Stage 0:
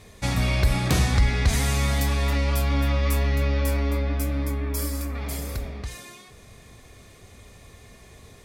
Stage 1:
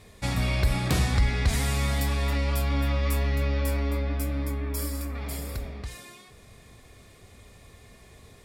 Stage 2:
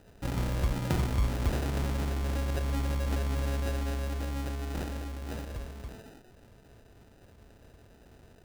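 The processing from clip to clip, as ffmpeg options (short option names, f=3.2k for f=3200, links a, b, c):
-af "bandreject=f=6.2k:w=13,volume=-3dB"
-af "equalizer=f=8.1k:t=o:w=1.1:g=5.5,acrusher=samples=40:mix=1:aa=0.000001,volume=-5dB"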